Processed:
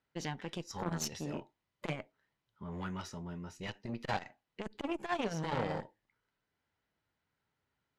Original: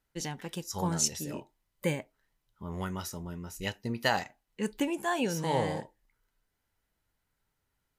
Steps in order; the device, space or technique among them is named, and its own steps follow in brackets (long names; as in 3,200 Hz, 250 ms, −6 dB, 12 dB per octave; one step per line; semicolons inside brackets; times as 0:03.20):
valve radio (band-pass filter 95–4,200 Hz; tube saturation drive 27 dB, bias 0.75; saturating transformer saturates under 560 Hz)
level +3.5 dB